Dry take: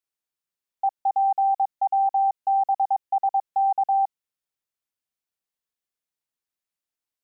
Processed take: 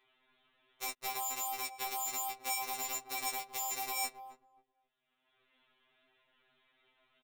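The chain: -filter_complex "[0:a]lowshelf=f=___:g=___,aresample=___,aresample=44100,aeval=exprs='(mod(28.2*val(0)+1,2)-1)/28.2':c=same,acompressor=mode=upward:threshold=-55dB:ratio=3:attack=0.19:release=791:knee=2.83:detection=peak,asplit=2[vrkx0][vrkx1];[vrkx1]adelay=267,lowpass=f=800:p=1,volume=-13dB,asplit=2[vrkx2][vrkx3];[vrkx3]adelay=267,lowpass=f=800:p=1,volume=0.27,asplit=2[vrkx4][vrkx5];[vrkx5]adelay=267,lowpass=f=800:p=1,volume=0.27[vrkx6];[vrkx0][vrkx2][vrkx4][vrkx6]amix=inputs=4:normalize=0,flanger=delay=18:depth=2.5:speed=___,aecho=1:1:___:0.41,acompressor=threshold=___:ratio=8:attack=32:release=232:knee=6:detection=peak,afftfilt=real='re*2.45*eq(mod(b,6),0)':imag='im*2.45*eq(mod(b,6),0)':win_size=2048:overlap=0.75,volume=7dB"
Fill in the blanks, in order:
480, -2.5, 8000, 1.3, 4.8, -40dB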